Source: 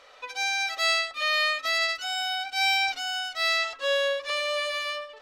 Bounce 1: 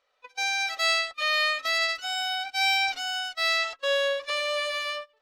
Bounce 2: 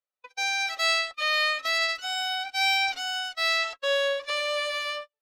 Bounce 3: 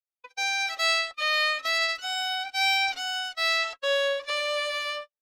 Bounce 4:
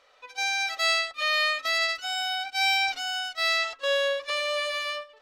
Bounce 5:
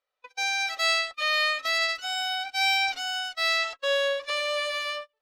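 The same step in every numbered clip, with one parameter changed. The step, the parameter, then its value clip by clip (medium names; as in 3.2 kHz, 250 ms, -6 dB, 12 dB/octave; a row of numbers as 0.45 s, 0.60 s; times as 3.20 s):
gate, range: -21 dB, -47 dB, -60 dB, -8 dB, -34 dB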